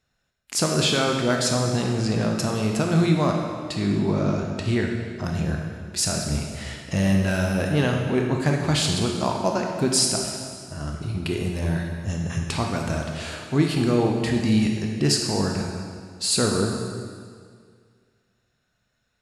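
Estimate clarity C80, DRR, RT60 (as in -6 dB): 4.5 dB, 1.0 dB, 2.0 s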